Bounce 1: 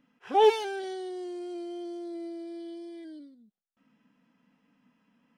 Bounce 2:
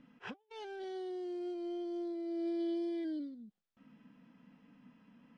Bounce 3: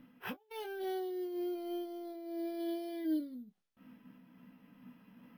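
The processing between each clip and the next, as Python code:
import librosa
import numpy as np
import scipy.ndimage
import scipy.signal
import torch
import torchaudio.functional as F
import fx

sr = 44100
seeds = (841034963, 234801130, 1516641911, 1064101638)

y1 = fx.low_shelf(x, sr, hz=290.0, db=7.5)
y1 = fx.over_compress(y1, sr, threshold_db=-37.0, ratio=-0.5)
y1 = scipy.signal.sosfilt(scipy.signal.butter(2, 5200.0, 'lowpass', fs=sr, output='sos'), y1)
y1 = F.gain(torch.from_numpy(y1), -4.0).numpy()
y2 = fx.room_early_taps(y1, sr, ms=(16, 28), db=(-7.5, -12.5))
y2 = np.repeat(scipy.signal.resample_poly(y2, 1, 3), 3)[:len(y2)]
y2 = fx.am_noise(y2, sr, seeds[0], hz=5.7, depth_pct=55)
y2 = F.gain(torch.from_numpy(y2), 4.5).numpy()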